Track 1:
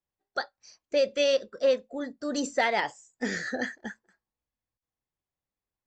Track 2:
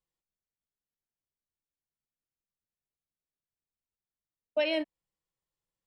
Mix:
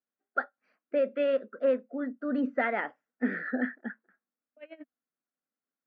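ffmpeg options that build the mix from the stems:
ffmpeg -i stem1.wav -i stem2.wav -filter_complex "[0:a]lowpass=frequency=2900:poles=1,volume=-2dB,asplit=2[link_01][link_02];[1:a]aeval=exprs='val(0)*pow(10,-22*(0.5-0.5*cos(2*PI*11*n/s))/20)':channel_layout=same,volume=-9.5dB[link_03];[link_02]apad=whole_len=258447[link_04];[link_03][link_04]sidechaincompress=threshold=-42dB:ratio=8:attack=10:release=1290[link_05];[link_01][link_05]amix=inputs=2:normalize=0,highpass=frequency=200:width=0.5412,highpass=frequency=200:width=1.3066,equalizer=frequency=250:width_type=q:width=4:gain=9,equalizer=frequency=360:width_type=q:width=4:gain=-3,equalizer=frequency=920:width_type=q:width=4:gain=-8,equalizer=frequency=1400:width_type=q:width=4:gain=8,lowpass=frequency=2300:width=0.5412,lowpass=frequency=2300:width=1.3066" out.wav

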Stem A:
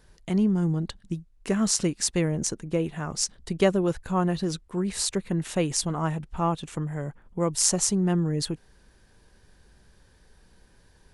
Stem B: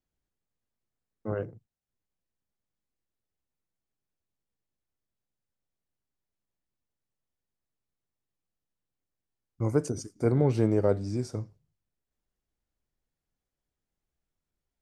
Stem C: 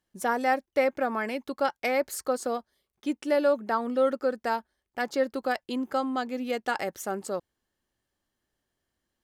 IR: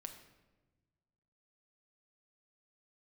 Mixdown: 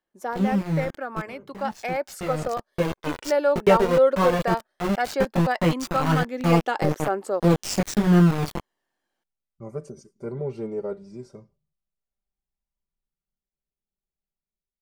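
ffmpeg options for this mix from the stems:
-filter_complex "[0:a]lowpass=6000,flanger=delay=17:depth=3.5:speed=1.1,aeval=exprs='val(0)*gte(abs(val(0)),0.0398)':channel_layout=same,adelay=50,volume=0dB[link_01];[1:a]bandreject=frequency=1700:width=6.5,aecho=1:1:5.1:0.91,volume=-16.5dB,asplit=2[link_02][link_03];[2:a]highpass=340,volume=-3dB[link_04];[link_03]apad=whole_len=493265[link_05];[link_01][link_05]sidechaincompress=threshold=-55dB:ratio=12:attack=5.5:release=1370[link_06];[link_06][link_02][link_04]amix=inputs=3:normalize=0,highshelf=frequency=3400:gain=-9,aphaser=in_gain=1:out_gain=1:delay=2.3:decay=0.34:speed=0.14:type=triangular,dynaudnorm=framelen=940:gausssize=5:maxgain=8dB"

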